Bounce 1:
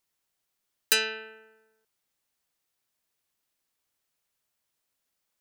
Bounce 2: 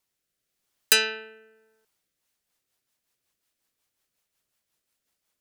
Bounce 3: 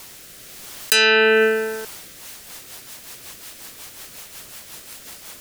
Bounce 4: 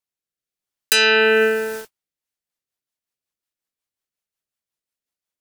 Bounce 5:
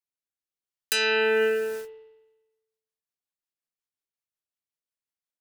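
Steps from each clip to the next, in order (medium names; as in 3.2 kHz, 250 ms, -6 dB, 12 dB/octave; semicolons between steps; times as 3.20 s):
rotary cabinet horn 0.9 Hz, later 5.5 Hz, at 1.75 s; trim +5 dB
level flattener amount 100%
gate -29 dBFS, range -50 dB
spring tank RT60 1.1 s, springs 43 ms, chirp 55 ms, DRR 11 dB; trim -9 dB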